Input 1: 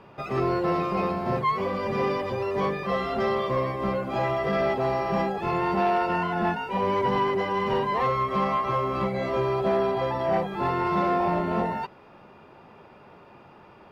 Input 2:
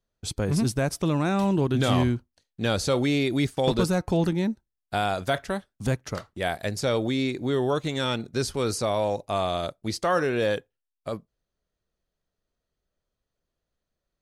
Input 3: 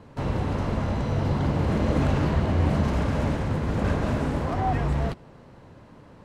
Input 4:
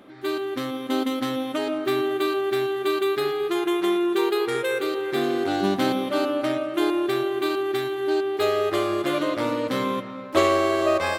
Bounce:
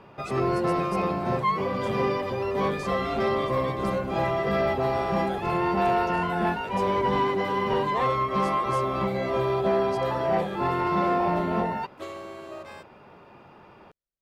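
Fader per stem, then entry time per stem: 0.0 dB, -15.5 dB, -19.0 dB, -19.0 dB; 0.00 s, 0.00 s, 2.15 s, 1.65 s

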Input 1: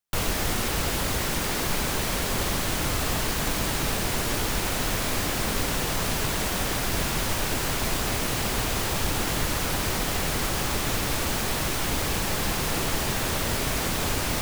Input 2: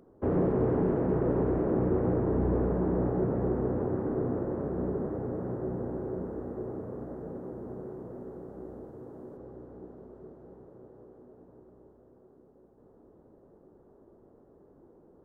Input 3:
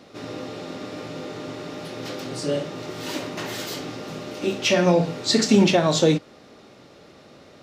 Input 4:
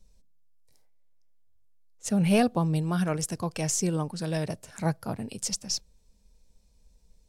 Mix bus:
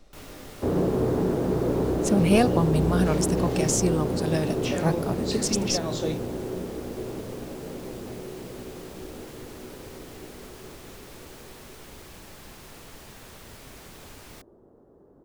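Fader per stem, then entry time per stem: -19.5 dB, +2.5 dB, -12.5 dB, +2.5 dB; 0.00 s, 0.40 s, 0.00 s, 0.00 s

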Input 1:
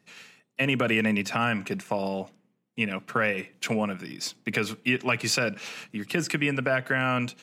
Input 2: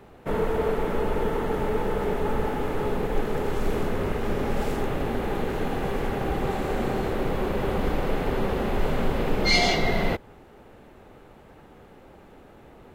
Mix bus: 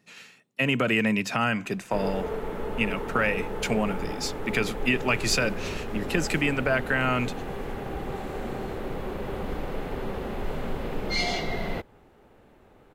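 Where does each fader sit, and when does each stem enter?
+0.5 dB, -6.5 dB; 0.00 s, 1.65 s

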